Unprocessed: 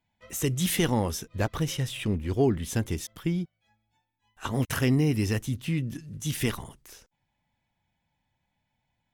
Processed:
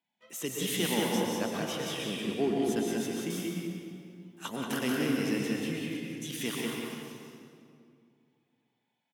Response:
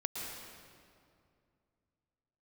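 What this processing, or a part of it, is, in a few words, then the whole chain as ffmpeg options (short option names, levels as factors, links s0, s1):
PA in a hall: -filter_complex "[0:a]highpass=f=190:w=0.5412,highpass=f=190:w=1.3066,equalizer=f=3200:t=o:w=0.46:g=4.5,aecho=1:1:183:0.596[s0];[1:a]atrim=start_sample=2205[s1];[s0][s1]afir=irnorm=-1:irlink=0,asettb=1/sr,asplit=3[s2][s3][s4];[s2]atrim=end=3.304[s5];[s3]atrim=start=3.3:end=4.56,asetpts=PTS-STARTPTS,afade=t=in:d=0.004:c=qsin,afade=t=out:st=1.256:d=0.004:c=qsin,highshelf=f=5700:g=11.5[s6];[s4]atrim=start=4.556[s7];[s5][s6]acrossfade=d=0.004:c1=hsin:c2=qsin[s8];[s8][s7]acrossfade=d=0.004:c1=qsin:c2=hsin,volume=0.531"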